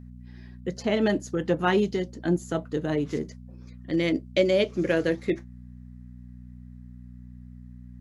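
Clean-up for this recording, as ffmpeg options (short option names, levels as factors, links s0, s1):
-af "bandreject=f=61.2:t=h:w=4,bandreject=f=122.4:t=h:w=4,bandreject=f=183.6:t=h:w=4,bandreject=f=244.8:t=h:w=4"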